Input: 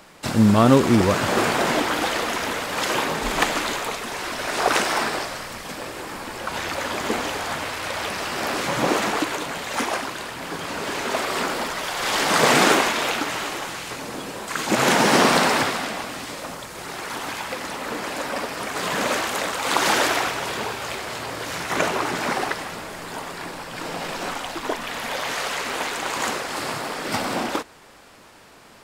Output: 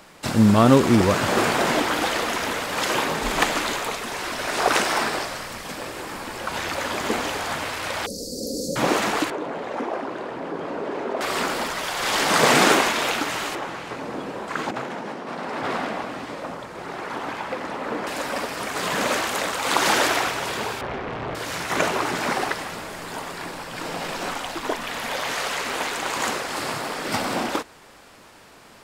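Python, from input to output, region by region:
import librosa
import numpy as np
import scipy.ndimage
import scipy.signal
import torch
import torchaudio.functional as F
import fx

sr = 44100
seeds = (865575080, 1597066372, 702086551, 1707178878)

y = fx.chain(x, sr, fx.cheby1_bandstop(low_hz=560.0, high_hz=4400.0, order=5),
    fx.comb(ms=4.1, depth=0.65), at=(8.06, 8.76))
y = fx.chain(y, sr, fx.bandpass_q(hz=420.0, q=1.0),
    fx.env_flatten(amount_pct=50), at=(9.3, 11.21))
y = fx.chain(y, sr, fx.lowpass(hz=1100.0, slope=6),
    fx.low_shelf(hz=100.0, db=-10.5),
    fx.over_compress(threshold_db=-28.0, ratio=-1.0), at=(13.55, 18.07))
y = fx.chain(y, sr, fx.lowpass(hz=1800.0, slope=12),
    fx.low_shelf(hz=440.0, db=7.5),
    fx.doppler_dist(depth_ms=0.98), at=(20.81, 21.35))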